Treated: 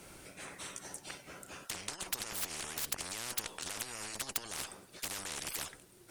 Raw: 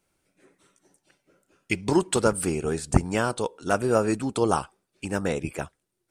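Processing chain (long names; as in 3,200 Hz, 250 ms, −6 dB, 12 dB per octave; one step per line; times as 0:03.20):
dynamic equaliser 330 Hz, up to +6 dB, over −35 dBFS, Q 1.7
compressor whose output falls as the input rises −29 dBFS, ratio −1
tube saturation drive 23 dB, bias 0.55
every bin compressed towards the loudest bin 10 to 1
level +4.5 dB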